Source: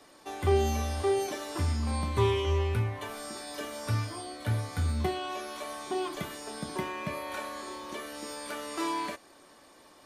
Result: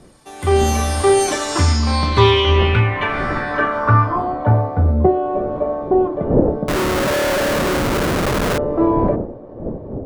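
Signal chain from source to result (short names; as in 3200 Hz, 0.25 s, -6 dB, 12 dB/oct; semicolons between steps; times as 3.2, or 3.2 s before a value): wind noise 310 Hz -40 dBFS; low-pass sweep 10000 Hz -> 550 Hz, 1.09–5; AGC gain up to 16 dB; 6.68–8.58 Schmitt trigger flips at -27.5 dBFS; dynamic EQ 1300 Hz, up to +4 dB, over -32 dBFS, Q 1.1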